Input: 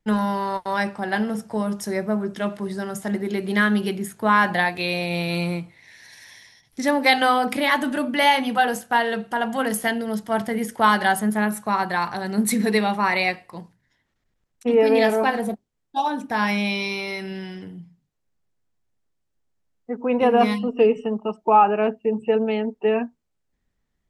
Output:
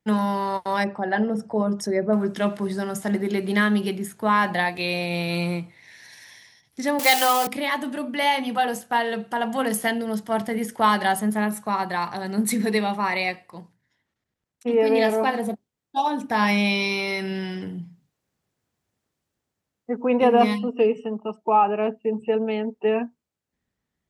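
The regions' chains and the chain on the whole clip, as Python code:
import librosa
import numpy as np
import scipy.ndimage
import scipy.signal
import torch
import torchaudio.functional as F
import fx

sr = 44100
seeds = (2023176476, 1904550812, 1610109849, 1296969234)

y = fx.chain(x, sr, fx.envelope_sharpen(power=1.5),
    fx.lowpass(hz=8600.0, slope=12), at=(0.84, 2.13))
y = fx.chain(y, sr, fx.crossing_spikes(level_db=-13.5),
    fx.highpass(hz=380.0, slope=12),
    fx.leveller(passes=1), at=(6.99, 7.47))
y = scipy.signal.sosfilt(scipy.signal.butter(2, 79.0, 'highpass', fs=sr, output='sos'), y)
y = fx.dynamic_eq(y, sr, hz=1500.0, q=6.7, threshold_db=-42.0, ratio=4.0, max_db=-7)
y = fx.rider(y, sr, range_db=10, speed_s=2.0)
y = F.gain(torch.from_numpy(y), -2.5).numpy()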